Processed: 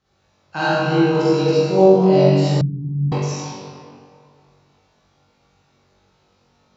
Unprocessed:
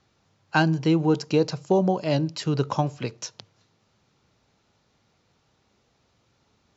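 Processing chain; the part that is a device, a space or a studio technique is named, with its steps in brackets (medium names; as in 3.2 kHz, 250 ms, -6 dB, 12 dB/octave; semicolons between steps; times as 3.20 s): tunnel (flutter echo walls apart 3.6 m, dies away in 0.55 s; reverberation RT60 2.3 s, pre-delay 38 ms, DRR -10.5 dB); 2.61–3.12 s: inverse Chebyshev low-pass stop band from 560 Hz, stop band 50 dB; trim -8 dB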